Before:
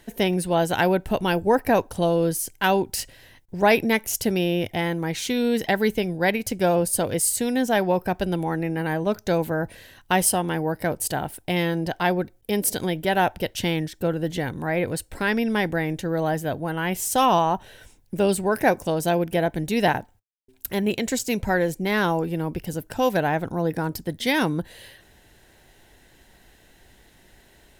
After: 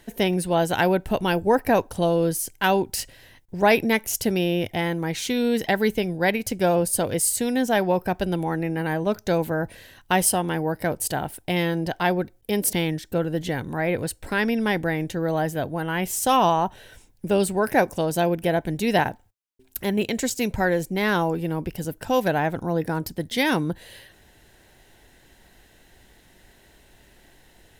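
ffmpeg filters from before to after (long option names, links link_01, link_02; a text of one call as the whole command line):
ffmpeg -i in.wav -filter_complex "[0:a]asplit=2[link_01][link_02];[link_01]atrim=end=12.732[link_03];[link_02]atrim=start=13.618[link_04];[link_03][link_04]acrossfade=duration=0.004:curve1=hsin:curve2=hsin" out.wav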